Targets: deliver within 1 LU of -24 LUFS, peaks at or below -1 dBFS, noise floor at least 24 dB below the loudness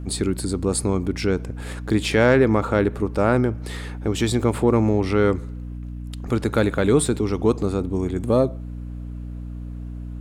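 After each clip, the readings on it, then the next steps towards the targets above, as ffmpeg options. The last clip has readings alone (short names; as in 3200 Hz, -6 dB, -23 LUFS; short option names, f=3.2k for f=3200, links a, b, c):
hum 60 Hz; harmonics up to 300 Hz; hum level -30 dBFS; loudness -21.5 LUFS; peak -5.5 dBFS; loudness target -24.0 LUFS
-> -af "bandreject=f=60:t=h:w=6,bandreject=f=120:t=h:w=6,bandreject=f=180:t=h:w=6,bandreject=f=240:t=h:w=6,bandreject=f=300:t=h:w=6"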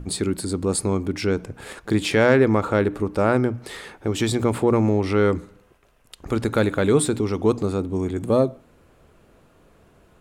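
hum none; loudness -22.0 LUFS; peak -4.5 dBFS; loudness target -24.0 LUFS
-> -af "volume=-2dB"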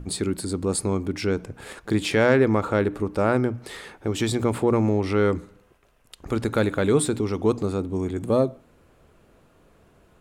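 loudness -24.0 LUFS; peak -6.5 dBFS; noise floor -59 dBFS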